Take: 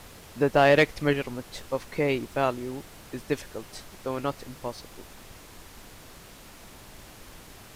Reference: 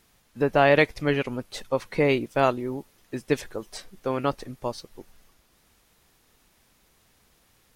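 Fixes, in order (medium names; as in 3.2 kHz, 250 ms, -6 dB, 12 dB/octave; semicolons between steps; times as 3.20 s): clip repair -10.5 dBFS; noise print and reduce 15 dB; gain correction +4 dB, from 1.13 s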